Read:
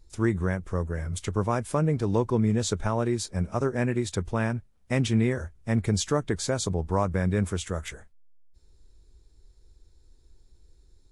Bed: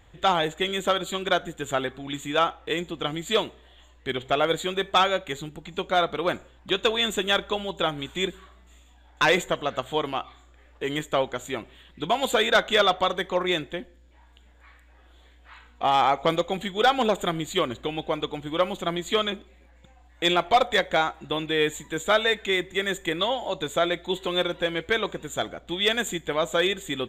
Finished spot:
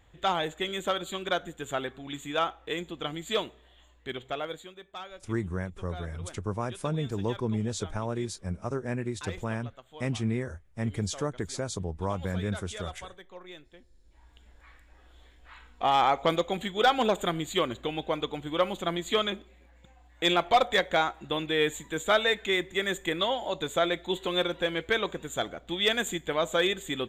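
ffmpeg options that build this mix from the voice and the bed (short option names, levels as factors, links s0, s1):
-filter_complex "[0:a]adelay=5100,volume=0.501[s0];[1:a]volume=4.73,afade=t=out:st=3.91:d=0.84:silence=0.158489,afade=t=in:st=13.91:d=0.5:silence=0.112202[s1];[s0][s1]amix=inputs=2:normalize=0"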